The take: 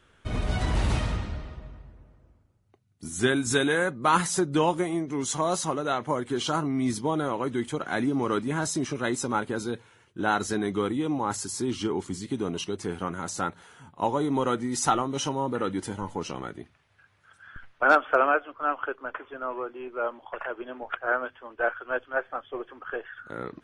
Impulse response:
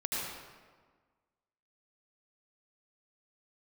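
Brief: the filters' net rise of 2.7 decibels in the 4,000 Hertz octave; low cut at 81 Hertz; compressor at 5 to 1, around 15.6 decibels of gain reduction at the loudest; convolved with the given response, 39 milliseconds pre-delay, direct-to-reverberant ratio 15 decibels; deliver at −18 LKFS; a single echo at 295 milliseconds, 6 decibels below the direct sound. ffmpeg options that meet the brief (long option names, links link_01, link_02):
-filter_complex "[0:a]highpass=81,equalizer=frequency=4000:width_type=o:gain=3.5,acompressor=threshold=-33dB:ratio=5,aecho=1:1:295:0.501,asplit=2[link_01][link_02];[1:a]atrim=start_sample=2205,adelay=39[link_03];[link_02][link_03]afir=irnorm=-1:irlink=0,volume=-20.5dB[link_04];[link_01][link_04]amix=inputs=2:normalize=0,volume=18dB"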